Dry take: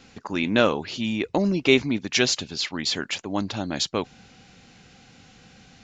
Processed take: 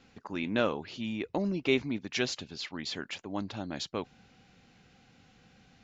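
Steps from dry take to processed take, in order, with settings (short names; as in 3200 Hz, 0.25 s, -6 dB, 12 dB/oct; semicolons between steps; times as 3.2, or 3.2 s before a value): high shelf 6000 Hz -10.5 dB; gain -8.5 dB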